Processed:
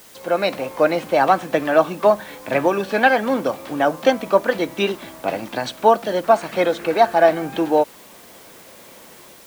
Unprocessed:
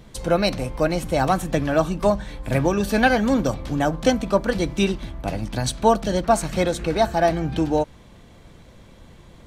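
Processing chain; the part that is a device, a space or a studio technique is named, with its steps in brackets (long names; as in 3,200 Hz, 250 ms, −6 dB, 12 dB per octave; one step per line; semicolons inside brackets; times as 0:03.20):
dictaphone (band-pass filter 370–3,100 Hz; automatic gain control gain up to 8 dB; tape wow and flutter; white noise bed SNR 27 dB)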